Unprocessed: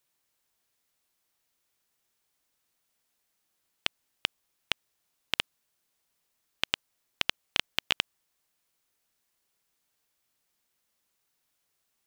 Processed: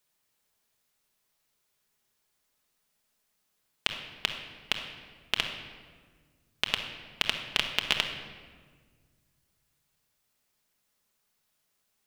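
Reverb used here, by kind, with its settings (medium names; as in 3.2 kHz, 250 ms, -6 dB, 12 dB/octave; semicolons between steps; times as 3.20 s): simulated room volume 1900 m³, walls mixed, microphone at 1.4 m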